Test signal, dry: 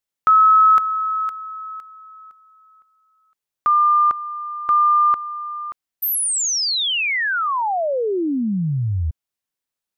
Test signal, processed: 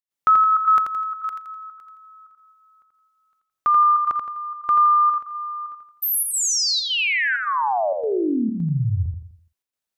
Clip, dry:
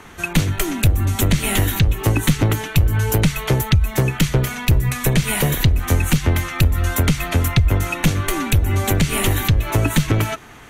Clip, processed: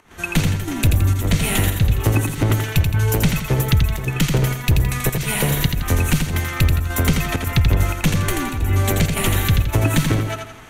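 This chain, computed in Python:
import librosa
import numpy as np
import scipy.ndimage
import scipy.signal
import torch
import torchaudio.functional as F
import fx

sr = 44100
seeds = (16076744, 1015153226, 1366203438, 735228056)

y = fx.volume_shaper(x, sr, bpm=106, per_beat=1, depth_db=-15, release_ms=107.0, shape='slow start')
y = fx.echo_feedback(y, sr, ms=84, feedback_pct=41, wet_db=-5.0)
y = y * librosa.db_to_amplitude(-1.5)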